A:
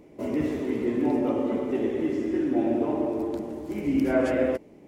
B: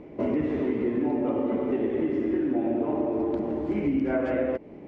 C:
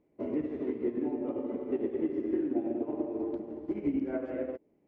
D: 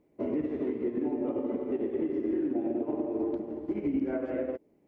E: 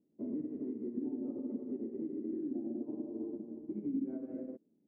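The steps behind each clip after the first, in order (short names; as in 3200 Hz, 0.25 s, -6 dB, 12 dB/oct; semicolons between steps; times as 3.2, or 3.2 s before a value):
LPF 2500 Hz 12 dB/oct; compressor, threshold -30 dBFS, peak gain reduction 12 dB; gain +7 dB
dynamic EQ 370 Hz, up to +7 dB, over -39 dBFS, Q 0.94; upward expander 2.5:1, over -29 dBFS; gain -8 dB
limiter -25.5 dBFS, peak gain reduction 6 dB; gain +3.5 dB
band-pass 220 Hz, Q 2.4; gain -2.5 dB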